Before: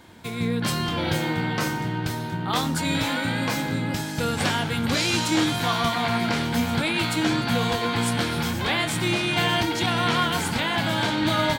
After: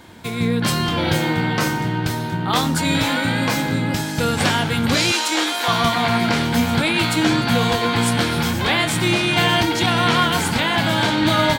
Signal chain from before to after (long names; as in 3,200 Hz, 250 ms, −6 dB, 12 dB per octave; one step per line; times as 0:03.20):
0:05.12–0:05.68: Bessel high-pass filter 490 Hz, order 8
level +5.5 dB